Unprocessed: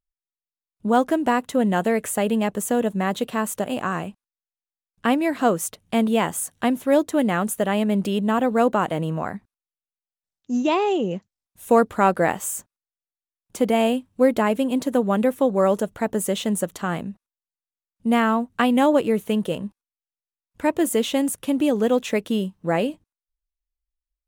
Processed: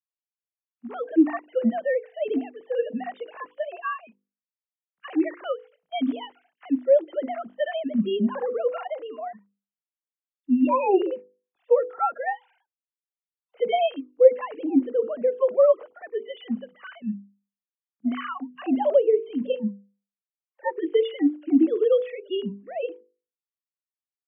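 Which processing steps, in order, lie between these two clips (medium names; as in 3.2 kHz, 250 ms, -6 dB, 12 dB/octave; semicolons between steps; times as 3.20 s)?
formants replaced by sine waves; harmonic-percussive split percussive -18 dB; hum notches 50/100/150/200/250/300/350/400/450/500 Hz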